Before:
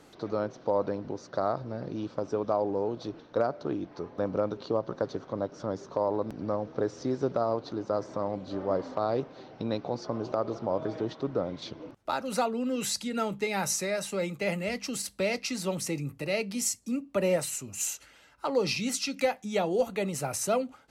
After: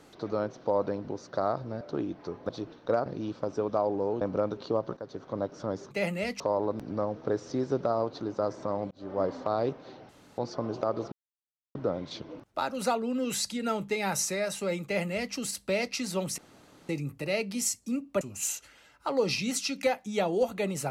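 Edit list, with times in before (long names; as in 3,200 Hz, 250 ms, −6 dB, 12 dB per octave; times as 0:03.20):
0:01.81–0:02.96: swap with 0:03.53–0:04.21
0:04.97–0:05.36: fade in, from −14.5 dB
0:08.42–0:08.72: fade in linear
0:09.60–0:09.89: fill with room tone
0:10.63–0:11.26: silence
0:14.36–0:14.85: duplicate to 0:05.91
0:15.89: splice in room tone 0.51 s
0:17.21–0:17.59: remove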